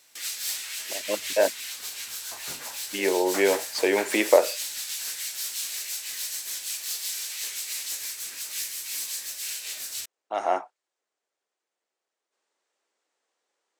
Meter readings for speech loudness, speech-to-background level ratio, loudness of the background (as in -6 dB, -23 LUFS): -25.0 LUFS, 6.0 dB, -31.0 LUFS